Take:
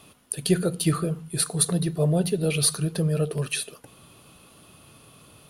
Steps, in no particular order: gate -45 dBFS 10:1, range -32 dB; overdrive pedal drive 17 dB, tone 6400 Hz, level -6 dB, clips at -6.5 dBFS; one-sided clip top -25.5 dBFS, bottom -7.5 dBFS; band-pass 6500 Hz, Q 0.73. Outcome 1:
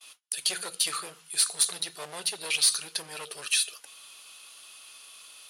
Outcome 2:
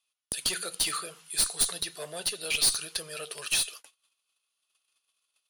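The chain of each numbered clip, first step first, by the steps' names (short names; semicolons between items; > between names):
one-sided clip > overdrive pedal > gate > band-pass; gate > overdrive pedal > band-pass > one-sided clip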